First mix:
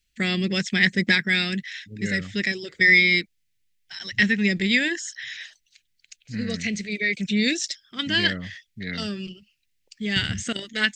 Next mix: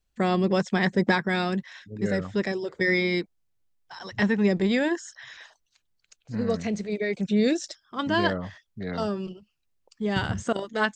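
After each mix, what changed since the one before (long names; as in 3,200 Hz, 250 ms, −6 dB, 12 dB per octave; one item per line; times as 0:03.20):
master: remove drawn EQ curve 240 Hz 0 dB, 1,000 Hz −16 dB, 2,000 Hz +12 dB, 8,400 Hz +8 dB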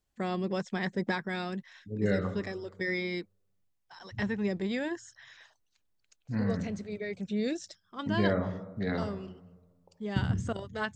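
first voice −9.0 dB
reverb: on, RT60 1.3 s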